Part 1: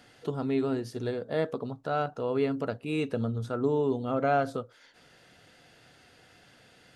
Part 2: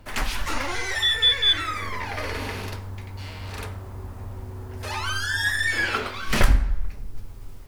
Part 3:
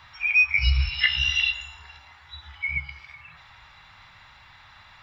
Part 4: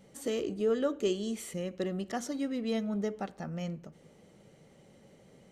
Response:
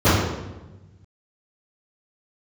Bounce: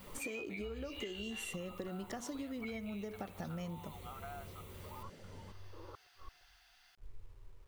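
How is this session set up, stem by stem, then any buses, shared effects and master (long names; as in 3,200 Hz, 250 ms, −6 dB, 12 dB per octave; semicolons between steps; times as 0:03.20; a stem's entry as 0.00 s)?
−9.0 dB, 0.00 s, no bus, no send, brick-wall band-pass 670–6,500 Hz; high-shelf EQ 5,100 Hz +10 dB; downward compressor, threshold −38 dBFS, peak gain reduction 14.5 dB
−15.5 dB, 0.00 s, bus A, no send, Butterworth low-pass 1,200 Hz 48 dB per octave; gate with flip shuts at −21 dBFS, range −39 dB
−10.5 dB, 0.00 s, bus A, no send, bit-depth reduction 8 bits, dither triangular
+1.5 dB, 0.00 s, no bus, no send, downward compressor, threshold −33 dBFS, peak gain reduction 9 dB
bus A: 0.0 dB, phaser with its sweep stopped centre 1,100 Hz, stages 8; downward compressor, threshold −37 dBFS, peak gain reduction 11.5 dB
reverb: not used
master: bit-depth reduction 12 bits, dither none; downward compressor 10 to 1, threshold −39 dBFS, peak gain reduction 11 dB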